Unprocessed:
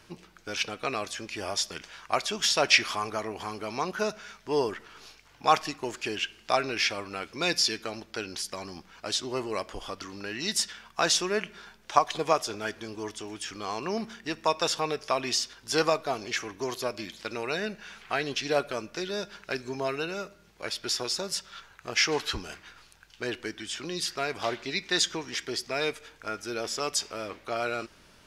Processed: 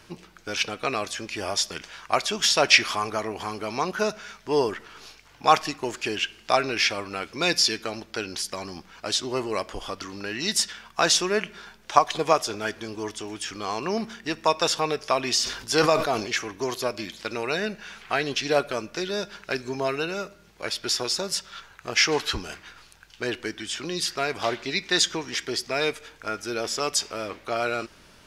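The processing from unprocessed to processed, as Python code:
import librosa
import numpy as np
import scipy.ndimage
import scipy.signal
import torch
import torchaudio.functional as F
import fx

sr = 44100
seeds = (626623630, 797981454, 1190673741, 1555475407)

y = fx.sustainer(x, sr, db_per_s=81.0, at=(15.34, 16.27))
y = y * librosa.db_to_amplitude(4.0)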